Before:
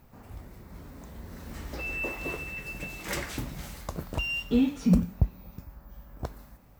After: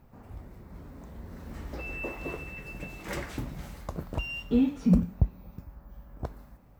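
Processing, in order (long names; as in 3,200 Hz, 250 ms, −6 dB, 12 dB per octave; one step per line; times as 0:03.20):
high-shelf EQ 2,200 Hz −9 dB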